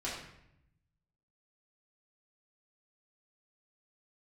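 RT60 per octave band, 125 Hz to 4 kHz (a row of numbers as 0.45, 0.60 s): 1.5, 1.1, 0.80, 0.75, 0.75, 0.60 s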